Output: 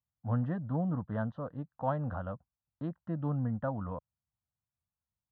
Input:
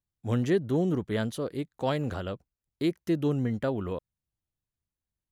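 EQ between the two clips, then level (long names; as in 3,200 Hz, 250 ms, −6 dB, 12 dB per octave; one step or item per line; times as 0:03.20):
high-pass filter 74 Hz
low-pass filter 1,900 Hz 24 dB per octave
phaser with its sweep stopped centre 930 Hz, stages 4
0.0 dB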